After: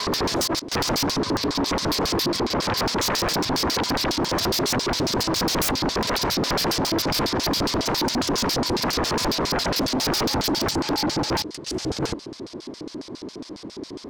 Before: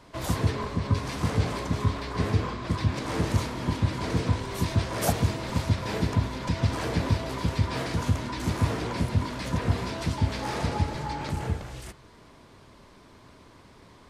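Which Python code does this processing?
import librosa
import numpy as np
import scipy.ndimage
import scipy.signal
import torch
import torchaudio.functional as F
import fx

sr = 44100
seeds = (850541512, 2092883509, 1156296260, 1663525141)

y = fx.block_reorder(x, sr, ms=119.0, group=6)
y = fx.filter_lfo_bandpass(y, sr, shape='square', hz=7.3, low_hz=320.0, high_hz=5000.0, q=2.9)
y = fx.fold_sine(y, sr, drive_db=19, ceiling_db=-22.5)
y = fx.peak_eq(y, sr, hz=2300.0, db=-3.0, octaves=2.1)
y = y * librosa.db_to_amplitude(4.0)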